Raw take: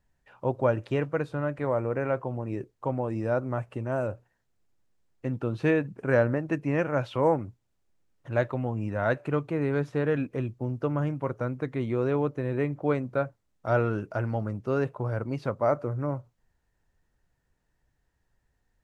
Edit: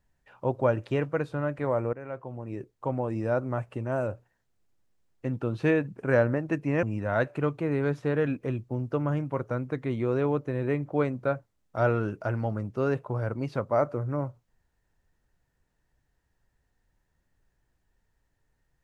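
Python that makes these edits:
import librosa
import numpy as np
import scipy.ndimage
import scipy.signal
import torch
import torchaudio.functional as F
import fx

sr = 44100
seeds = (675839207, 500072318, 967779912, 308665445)

y = fx.edit(x, sr, fx.fade_in_from(start_s=1.93, length_s=1.04, floor_db=-14.5),
    fx.cut(start_s=6.83, length_s=1.9), tone=tone)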